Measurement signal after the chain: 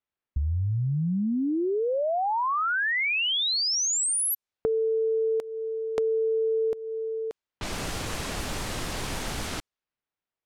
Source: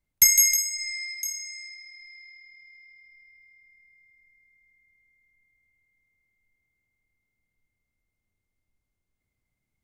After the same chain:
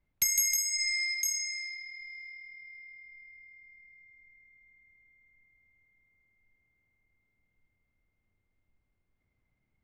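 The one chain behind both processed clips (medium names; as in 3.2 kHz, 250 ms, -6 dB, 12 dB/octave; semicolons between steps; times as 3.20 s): compression 4:1, threshold -30 dBFS; level-controlled noise filter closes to 2.5 kHz, open at -29 dBFS; trim +4 dB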